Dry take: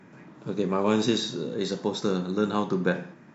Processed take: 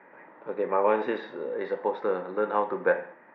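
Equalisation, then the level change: speaker cabinet 480–2200 Hz, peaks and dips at 520 Hz +9 dB, 880 Hz +7 dB, 1900 Hz +7 dB; 0.0 dB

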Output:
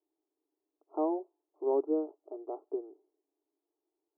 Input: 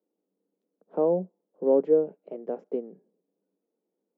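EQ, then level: brick-wall FIR band-pass 290–1400 Hz; fixed phaser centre 510 Hz, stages 6; 0.0 dB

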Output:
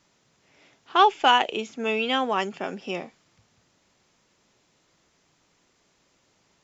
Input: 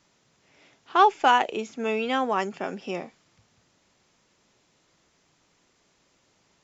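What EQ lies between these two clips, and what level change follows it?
dynamic EQ 3100 Hz, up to +8 dB, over -48 dBFS, Q 2.3; 0.0 dB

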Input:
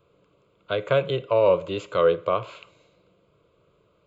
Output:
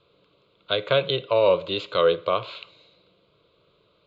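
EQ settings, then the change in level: synth low-pass 4000 Hz, resonance Q 4.8; low shelf 150 Hz -4.5 dB; 0.0 dB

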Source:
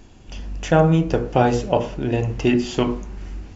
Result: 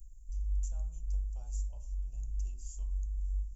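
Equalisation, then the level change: inverse Chebyshev band-stop 130–4200 Hz, stop band 50 dB; low shelf 190 Hz -5 dB; notch 470 Hz, Q 12; +5.5 dB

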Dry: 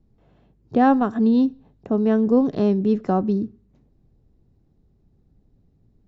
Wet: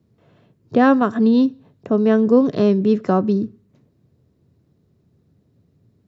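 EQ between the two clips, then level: HPF 97 Hz 24 dB/oct; bell 240 Hz -4.5 dB 1.7 oct; bell 800 Hz -11 dB 0.2 oct; +7.0 dB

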